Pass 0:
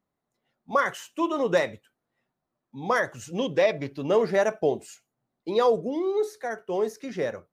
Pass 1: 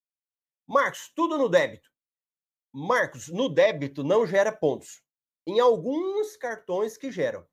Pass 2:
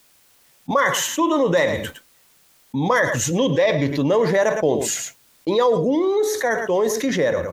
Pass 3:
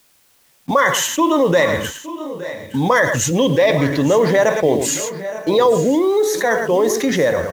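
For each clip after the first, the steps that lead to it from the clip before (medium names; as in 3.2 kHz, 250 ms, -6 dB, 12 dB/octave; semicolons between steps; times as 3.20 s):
expander -49 dBFS; rippled EQ curve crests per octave 1.1, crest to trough 6 dB
delay 110 ms -18.5 dB; level flattener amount 70%
in parallel at -6 dB: word length cut 6-bit, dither none; on the sum: multi-tap echo 866/898 ms -17/-15.5 dB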